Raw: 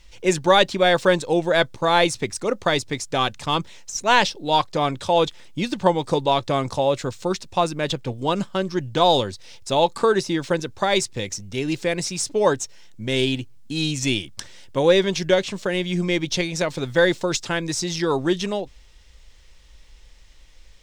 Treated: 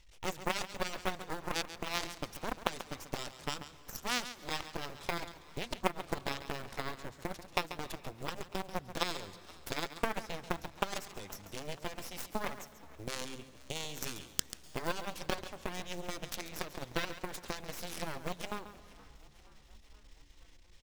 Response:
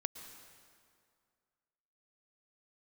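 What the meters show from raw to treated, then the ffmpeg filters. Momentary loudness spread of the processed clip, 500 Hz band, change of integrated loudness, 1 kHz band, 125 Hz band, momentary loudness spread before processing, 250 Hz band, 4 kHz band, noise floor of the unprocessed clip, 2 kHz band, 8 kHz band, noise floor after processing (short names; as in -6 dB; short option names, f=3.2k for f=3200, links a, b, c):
8 LU, -21.5 dB, -18.0 dB, -17.0 dB, -18.0 dB, 10 LU, -19.5 dB, -16.0 dB, -48 dBFS, -15.0 dB, -13.5 dB, -57 dBFS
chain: -filter_complex "[0:a]acompressor=threshold=-36dB:ratio=3,acrusher=bits=7:mode=log:mix=0:aa=0.000001,aeval=exprs='0.15*(cos(1*acos(clip(val(0)/0.15,-1,1)))-cos(1*PI/2))+0.0211*(cos(2*acos(clip(val(0)/0.15,-1,1)))-cos(2*PI/2))+0.0531*(cos(3*acos(clip(val(0)/0.15,-1,1)))-cos(3*PI/2))+0.000944*(cos(6*acos(clip(val(0)/0.15,-1,1)))-cos(6*PI/2))':c=same,asplit=6[a][b][c][d][e][f];[b]adelay=475,afreqshift=71,volume=-22dB[g];[c]adelay=950,afreqshift=142,volume=-26.3dB[h];[d]adelay=1425,afreqshift=213,volume=-30.6dB[i];[e]adelay=1900,afreqshift=284,volume=-34.9dB[j];[f]adelay=2375,afreqshift=355,volume=-39.2dB[k];[a][g][h][i][j][k]amix=inputs=6:normalize=0,asplit=2[l][m];[1:a]atrim=start_sample=2205,adelay=138[n];[m][n]afir=irnorm=-1:irlink=0,volume=-11dB[o];[l][o]amix=inputs=2:normalize=0,volume=15dB"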